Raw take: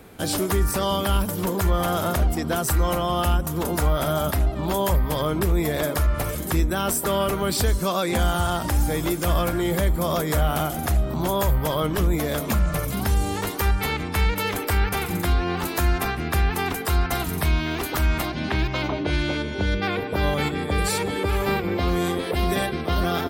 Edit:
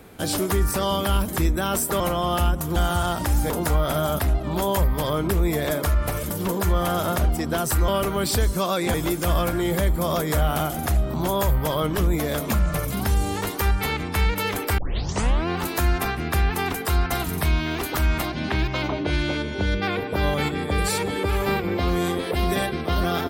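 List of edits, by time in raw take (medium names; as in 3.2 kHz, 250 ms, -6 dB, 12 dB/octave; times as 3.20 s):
1.28–2.86 s: swap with 6.42–7.14 s
8.20–8.94 s: move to 3.62 s
14.78 s: tape start 0.70 s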